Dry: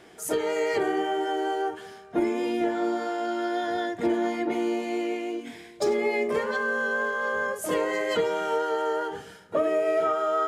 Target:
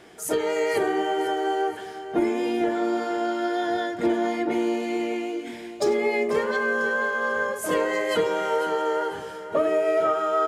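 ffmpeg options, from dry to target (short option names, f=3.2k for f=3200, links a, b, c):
-af "aecho=1:1:494|988|1482|1976|2470:0.224|0.103|0.0474|0.0218|0.01,volume=2dB"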